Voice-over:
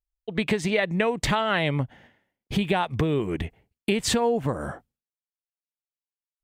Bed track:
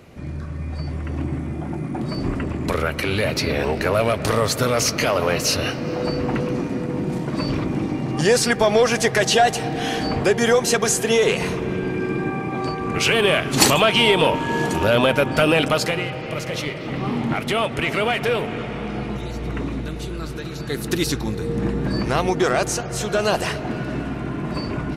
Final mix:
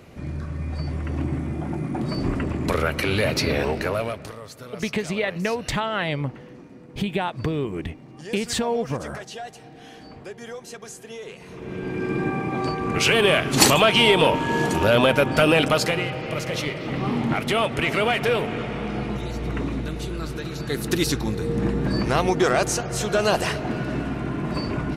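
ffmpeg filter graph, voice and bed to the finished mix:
ffmpeg -i stem1.wav -i stem2.wav -filter_complex "[0:a]adelay=4450,volume=-1.5dB[link_01];[1:a]volume=19dB,afade=type=out:start_time=3.53:duration=0.81:silence=0.105925,afade=type=in:start_time=11.46:duration=0.76:silence=0.105925[link_02];[link_01][link_02]amix=inputs=2:normalize=0" out.wav

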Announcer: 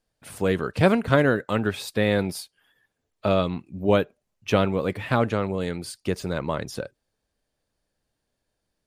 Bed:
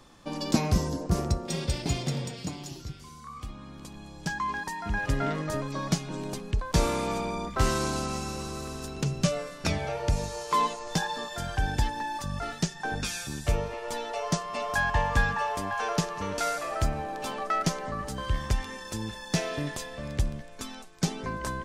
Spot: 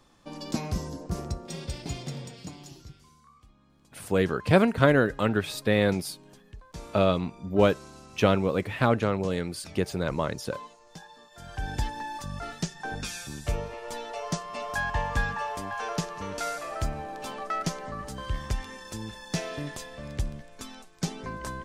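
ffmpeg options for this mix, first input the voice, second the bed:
ffmpeg -i stem1.wav -i stem2.wav -filter_complex "[0:a]adelay=3700,volume=-1dB[link_01];[1:a]volume=9dB,afade=type=out:start_time=2.7:duration=0.73:silence=0.251189,afade=type=in:start_time=11.31:duration=0.46:silence=0.177828[link_02];[link_01][link_02]amix=inputs=2:normalize=0" out.wav

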